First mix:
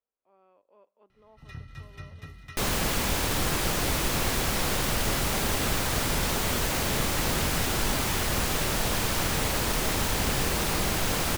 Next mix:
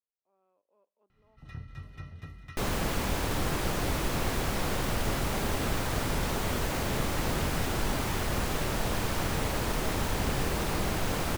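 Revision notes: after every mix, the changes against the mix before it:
speech −10.5 dB
second sound: send off
master: add high-shelf EQ 2,100 Hz −7.5 dB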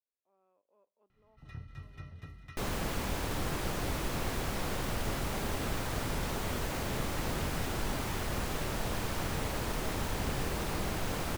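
first sound: send off
second sound −4.5 dB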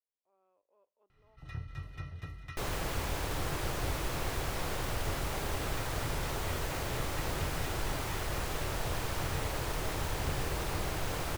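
first sound +5.0 dB
master: add parametric band 220 Hz −9.5 dB 0.55 octaves

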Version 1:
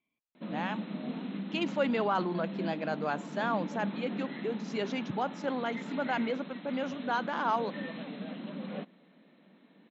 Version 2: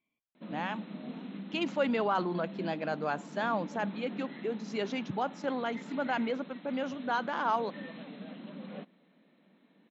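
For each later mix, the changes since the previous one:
background −4.5 dB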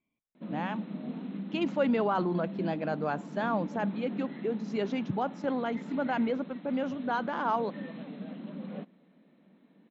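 master: add spectral tilt −2 dB per octave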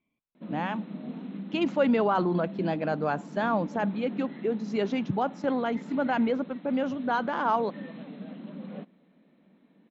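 speech +3.5 dB

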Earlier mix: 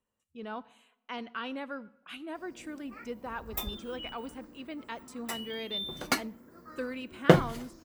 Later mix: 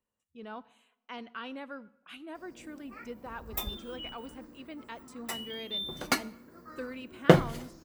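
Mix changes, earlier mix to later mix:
speech −3.5 dB
background: send on

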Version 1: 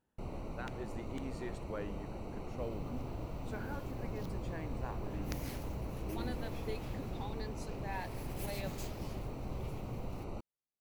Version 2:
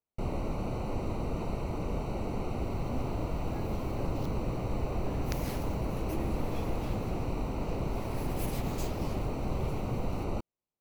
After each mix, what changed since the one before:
speech: muted
first sound +9.5 dB
second sound +4.5 dB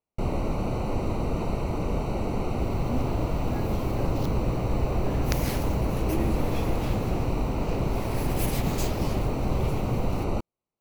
first sound +6.0 dB
second sound +9.0 dB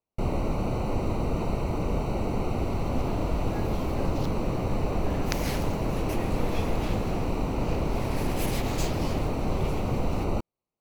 second sound: add meter weighting curve A

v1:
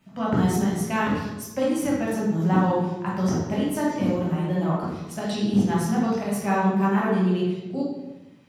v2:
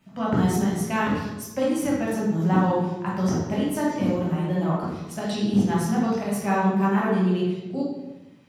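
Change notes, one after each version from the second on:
nothing changed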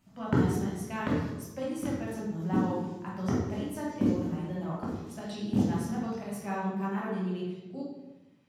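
speech −11.0 dB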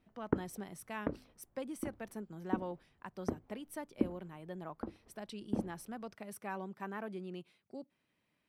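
background: add low-pass filter 1,200 Hz 12 dB per octave
reverb: off

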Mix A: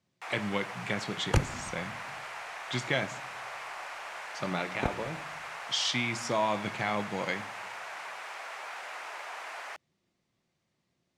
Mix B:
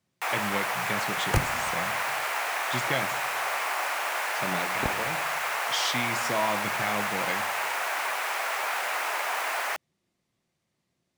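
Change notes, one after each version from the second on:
first sound +11.5 dB
master: remove low-pass filter 7,300 Hz 12 dB per octave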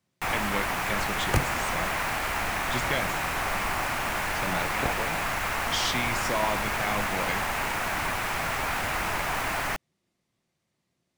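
first sound: remove high-pass filter 460 Hz 24 dB per octave

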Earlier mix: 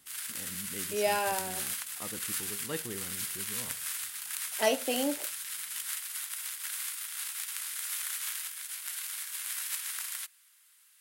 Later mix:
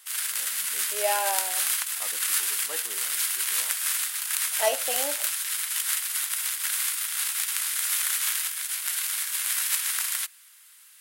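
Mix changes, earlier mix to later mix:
speech: add high-pass with resonance 680 Hz, resonance Q 1.5
background +9.5 dB

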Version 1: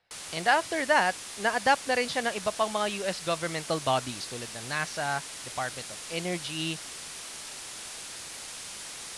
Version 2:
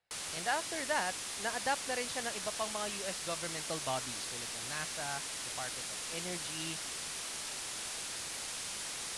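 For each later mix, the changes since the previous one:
speech −10.5 dB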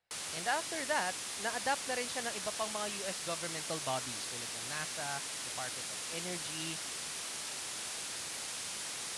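background: add high-pass filter 80 Hz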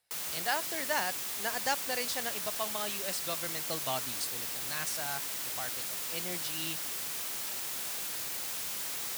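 speech: remove high-frequency loss of the air 230 metres
background: remove Chebyshev low-pass filter 10,000 Hz, order 4

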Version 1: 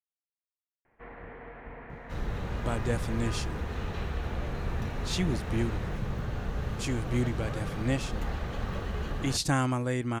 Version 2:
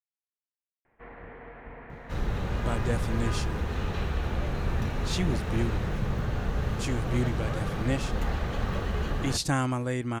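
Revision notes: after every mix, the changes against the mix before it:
second sound +4.0 dB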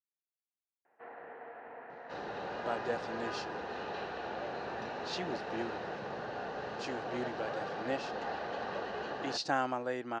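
second sound: add notch filter 1,300 Hz, Q 13
master: add loudspeaker in its box 460–4,700 Hz, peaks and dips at 750 Hz +4 dB, 1,100 Hz −5 dB, 2,200 Hz −10 dB, 3,400 Hz −8 dB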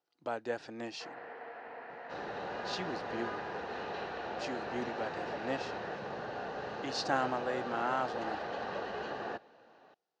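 speech: entry −2.40 s
first sound: remove high-frequency loss of the air 420 metres

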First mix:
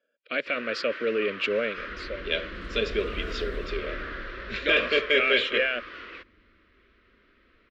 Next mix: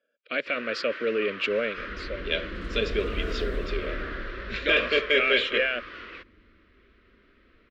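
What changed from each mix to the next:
second sound +4.0 dB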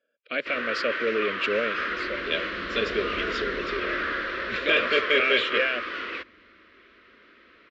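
first sound +9.0 dB
second sound: add resonant band-pass 360 Hz, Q 0.57

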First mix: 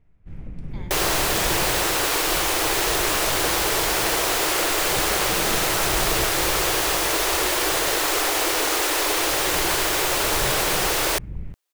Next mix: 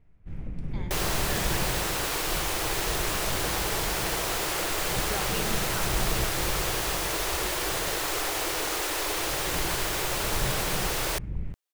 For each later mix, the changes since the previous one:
second sound −7.5 dB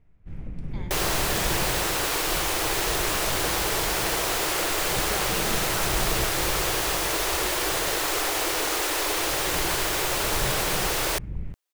second sound +3.5 dB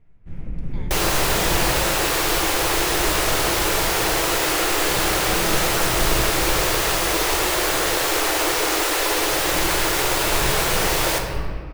first sound: send +10.5 dB
second sound: send on

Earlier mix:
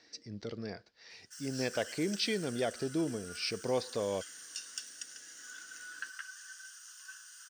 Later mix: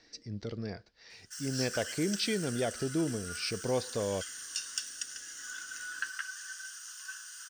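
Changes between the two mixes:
background +6.0 dB
master: remove high-pass filter 210 Hz 6 dB per octave

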